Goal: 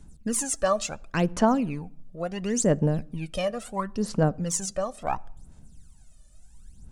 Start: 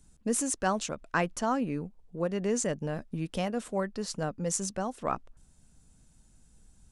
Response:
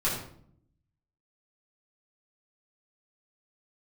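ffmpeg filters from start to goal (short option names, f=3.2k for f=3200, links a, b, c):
-filter_complex "[0:a]aphaser=in_gain=1:out_gain=1:delay=1.7:decay=0.74:speed=0.72:type=sinusoidal,asplit=2[a][b];[1:a]atrim=start_sample=2205[c];[b][c]afir=irnorm=-1:irlink=0,volume=-31dB[d];[a][d]amix=inputs=2:normalize=0"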